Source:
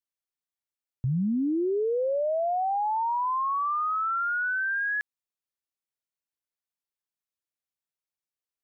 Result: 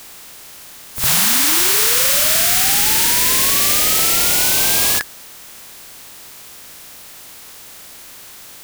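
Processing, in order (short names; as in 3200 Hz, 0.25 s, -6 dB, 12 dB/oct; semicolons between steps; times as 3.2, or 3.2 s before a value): spectral contrast lowered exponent 0.1; power-law curve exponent 0.35; reverse echo 58 ms -7.5 dB; gain -3.5 dB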